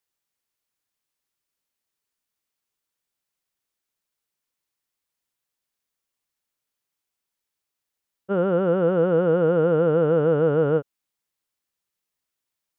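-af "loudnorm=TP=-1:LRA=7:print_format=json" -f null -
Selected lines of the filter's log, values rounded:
"input_i" : "-20.8",
"input_tp" : "-10.8",
"input_lra" : "4.1",
"input_thresh" : "-31.2",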